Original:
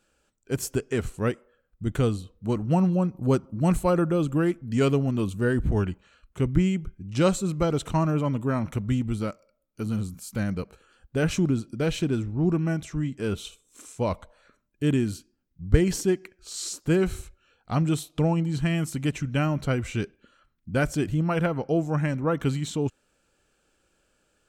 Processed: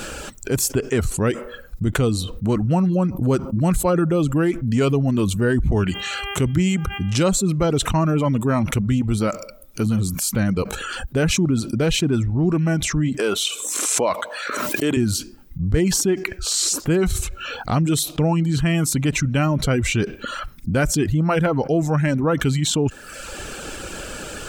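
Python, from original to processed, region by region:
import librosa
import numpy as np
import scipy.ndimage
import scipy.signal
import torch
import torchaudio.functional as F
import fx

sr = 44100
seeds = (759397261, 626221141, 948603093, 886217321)

y = fx.highpass(x, sr, hz=62.0, slope=12, at=(5.88, 7.22), fade=0.02)
y = fx.dmg_buzz(y, sr, base_hz=400.0, harmonics=8, level_db=-60.0, tilt_db=-1, odd_only=False, at=(5.88, 7.22), fade=0.02)
y = fx.high_shelf(y, sr, hz=3300.0, db=8.5, at=(5.88, 7.22), fade=0.02)
y = fx.chain(y, sr, fx.highpass(hz=380.0, slope=12),
    fx.pre_swell(db_per_s=78.0), at=(13.19, 14.97))
y = fx.dereverb_blind(y, sr, rt60_s=0.54)
y = fx.env_flatten(y, sr, amount_pct=70)
y = F.gain(torch.from_numpy(y), -2.0).numpy()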